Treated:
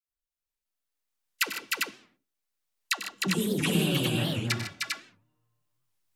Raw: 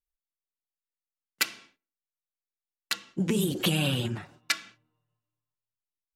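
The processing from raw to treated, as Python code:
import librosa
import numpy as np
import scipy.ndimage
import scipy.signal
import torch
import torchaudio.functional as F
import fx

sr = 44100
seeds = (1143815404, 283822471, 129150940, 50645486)

p1 = fx.recorder_agc(x, sr, target_db=-14.0, rise_db_per_s=9.6, max_gain_db=30)
p2 = fx.dispersion(p1, sr, late='lows', ms=89.0, hz=690.0)
p3 = p2 + fx.echo_multitap(p2, sr, ms=(95, 126, 151, 306, 399), db=(-11.5, -16.0, -11.0, -3.0, -3.0), dry=0)
p4 = fx.record_warp(p3, sr, rpm=78.0, depth_cents=250.0)
y = p4 * 10.0 ** (-4.0 / 20.0)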